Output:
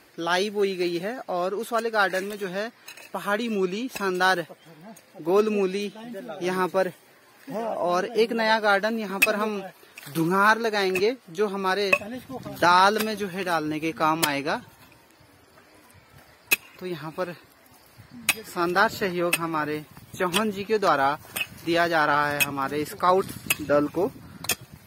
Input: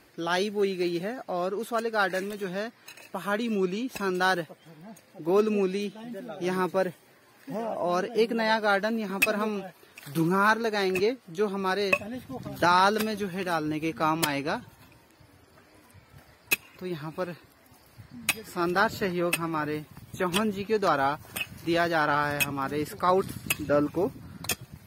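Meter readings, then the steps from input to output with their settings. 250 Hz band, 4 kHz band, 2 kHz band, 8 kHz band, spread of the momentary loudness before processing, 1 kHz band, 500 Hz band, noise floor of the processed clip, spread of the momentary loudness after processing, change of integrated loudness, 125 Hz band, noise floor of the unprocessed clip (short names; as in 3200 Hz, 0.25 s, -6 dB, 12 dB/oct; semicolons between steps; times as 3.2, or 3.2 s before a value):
+1.0 dB, +4.0 dB, +4.0 dB, +4.0 dB, 12 LU, +3.5 dB, +2.5 dB, -55 dBFS, 12 LU, +3.0 dB, -0.5 dB, -58 dBFS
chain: low shelf 240 Hz -6.5 dB; gain +4 dB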